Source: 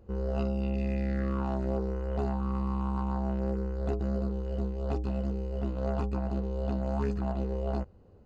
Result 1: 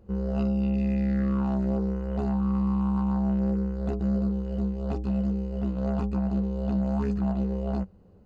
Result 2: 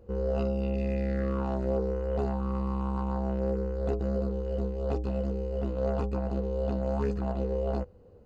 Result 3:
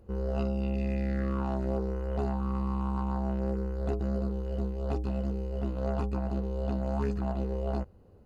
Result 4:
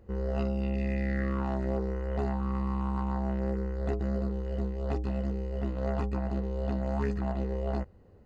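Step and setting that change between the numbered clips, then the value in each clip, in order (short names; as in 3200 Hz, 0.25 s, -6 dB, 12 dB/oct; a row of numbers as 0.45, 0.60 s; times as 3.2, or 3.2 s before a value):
bell, frequency: 190, 490, 11000, 1900 Hz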